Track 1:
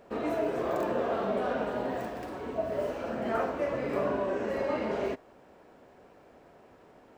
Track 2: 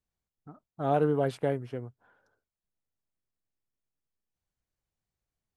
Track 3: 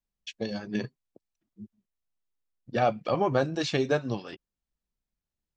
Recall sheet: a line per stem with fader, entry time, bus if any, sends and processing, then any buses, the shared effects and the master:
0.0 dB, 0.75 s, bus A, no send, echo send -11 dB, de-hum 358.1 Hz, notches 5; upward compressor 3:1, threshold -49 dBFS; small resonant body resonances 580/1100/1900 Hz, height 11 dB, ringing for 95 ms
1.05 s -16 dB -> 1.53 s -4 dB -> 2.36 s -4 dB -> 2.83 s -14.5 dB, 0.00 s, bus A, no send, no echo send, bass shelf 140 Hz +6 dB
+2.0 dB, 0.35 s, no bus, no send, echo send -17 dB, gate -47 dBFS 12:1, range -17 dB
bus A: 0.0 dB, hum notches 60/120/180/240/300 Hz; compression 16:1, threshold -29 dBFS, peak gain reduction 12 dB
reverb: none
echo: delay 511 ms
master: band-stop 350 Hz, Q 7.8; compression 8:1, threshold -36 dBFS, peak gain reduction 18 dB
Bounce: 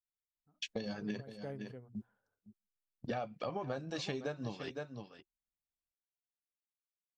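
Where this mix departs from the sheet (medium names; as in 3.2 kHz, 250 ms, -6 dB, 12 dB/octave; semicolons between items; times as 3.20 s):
stem 1: muted; stem 2 -16.0 dB -> -26.0 dB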